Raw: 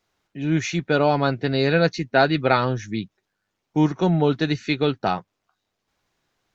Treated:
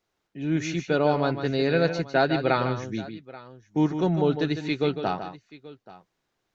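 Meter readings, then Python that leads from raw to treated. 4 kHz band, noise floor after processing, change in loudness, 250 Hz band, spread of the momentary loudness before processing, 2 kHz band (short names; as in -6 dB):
-5.5 dB, -79 dBFS, -3.5 dB, -3.0 dB, 10 LU, -5.0 dB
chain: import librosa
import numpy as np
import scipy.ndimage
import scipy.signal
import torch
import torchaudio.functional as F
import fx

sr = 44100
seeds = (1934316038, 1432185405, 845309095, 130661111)

y = fx.peak_eq(x, sr, hz=400.0, db=3.5, octaves=1.4)
y = fx.echo_multitap(y, sr, ms=(152, 831), db=(-9.0, -19.5))
y = y * librosa.db_to_amplitude(-6.0)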